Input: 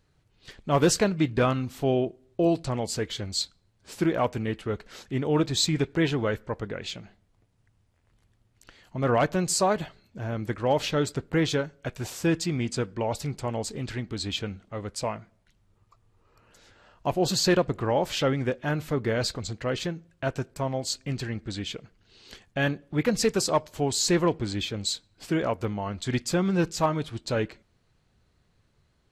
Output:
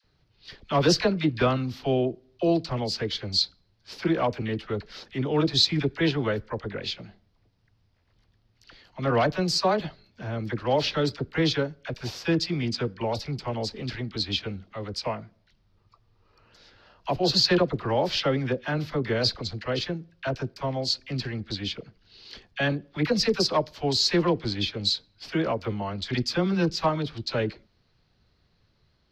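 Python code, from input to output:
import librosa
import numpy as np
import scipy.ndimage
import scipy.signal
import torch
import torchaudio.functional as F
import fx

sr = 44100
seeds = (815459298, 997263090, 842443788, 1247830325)

y = fx.high_shelf_res(x, sr, hz=6300.0, db=-9.5, q=3.0)
y = fx.dispersion(y, sr, late='lows', ms=45.0, hz=730.0)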